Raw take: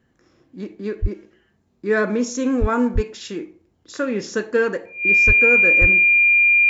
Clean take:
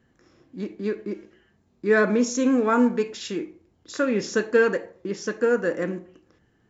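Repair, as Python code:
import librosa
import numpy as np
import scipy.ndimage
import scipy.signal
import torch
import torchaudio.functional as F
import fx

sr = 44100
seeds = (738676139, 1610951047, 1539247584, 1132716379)

y = fx.notch(x, sr, hz=2400.0, q=30.0)
y = fx.fix_deplosive(y, sr, at_s=(1.01, 2.6, 2.94, 5.26, 5.8))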